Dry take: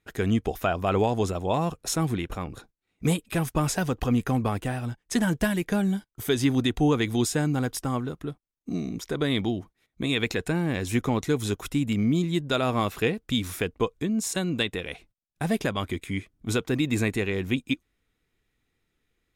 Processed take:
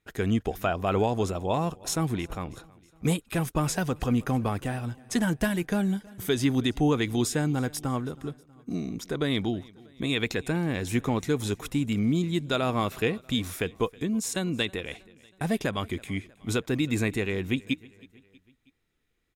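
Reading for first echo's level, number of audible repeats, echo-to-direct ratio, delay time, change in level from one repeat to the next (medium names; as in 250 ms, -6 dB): -23.5 dB, 3, -22.0 dB, 320 ms, -5.5 dB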